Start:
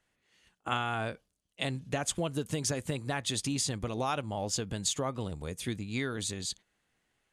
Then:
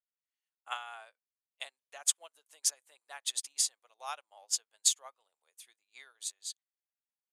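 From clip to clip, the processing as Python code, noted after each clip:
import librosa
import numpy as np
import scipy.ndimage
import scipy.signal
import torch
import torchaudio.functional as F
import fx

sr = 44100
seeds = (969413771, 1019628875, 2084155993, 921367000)

y = scipy.signal.sosfilt(scipy.signal.butter(4, 670.0, 'highpass', fs=sr, output='sos'), x)
y = fx.high_shelf(y, sr, hz=8400.0, db=10.0)
y = fx.upward_expand(y, sr, threshold_db=-47.0, expansion=2.5)
y = y * librosa.db_to_amplitude(3.0)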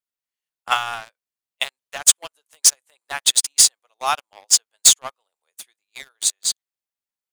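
y = fx.leveller(x, sr, passes=3)
y = y * librosa.db_to_amplitude(8.0)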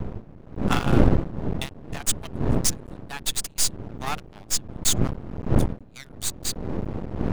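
y = fx.diode_clip(x, sr, knee_db=-17.0)
y = fx.dmg_wind(y, sr, seeds[0], corner_hz=210.0, level_db=-23.0)
y = np.maximum(y, 0.0)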